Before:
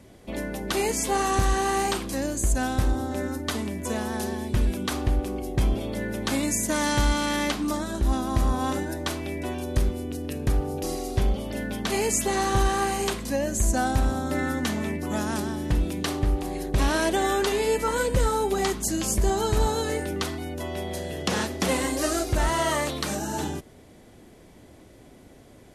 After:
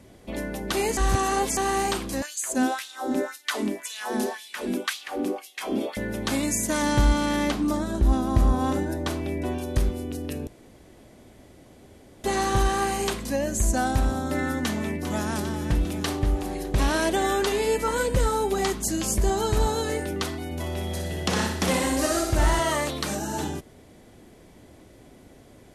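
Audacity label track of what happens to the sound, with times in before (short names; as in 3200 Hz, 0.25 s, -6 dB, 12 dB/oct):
0.970000	1.570000	reverse
2.220000	5.970000	LFO high-pass sine 1.9 Hz 230–3600 Hz
6.820000	9.580000	tilt shelf lows +3.5 dB
10.470000	12.240000	room tone
14.640000	15.340000	echo throw 0.4 s, feedback 70%, level -10.5 dB
20.450000	22.600000	flutter echo walls apart 10.3 m, dies away in 0.67 s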